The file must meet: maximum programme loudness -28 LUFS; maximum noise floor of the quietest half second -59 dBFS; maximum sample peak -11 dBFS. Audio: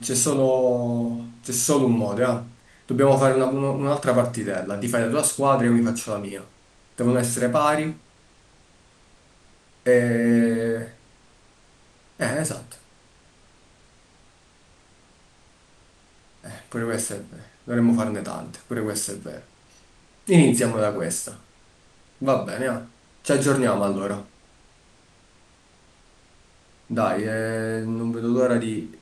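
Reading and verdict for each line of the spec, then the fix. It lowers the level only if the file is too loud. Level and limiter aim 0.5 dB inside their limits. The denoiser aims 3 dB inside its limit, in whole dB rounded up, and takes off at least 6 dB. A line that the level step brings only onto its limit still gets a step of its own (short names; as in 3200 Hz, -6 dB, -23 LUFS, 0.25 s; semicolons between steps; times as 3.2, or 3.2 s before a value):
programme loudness -22.5 LUFS: fail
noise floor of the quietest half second -56 dBFS: fail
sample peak -4.0 dBFS: fail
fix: gain -6 dB; limiter -11.5 dBFS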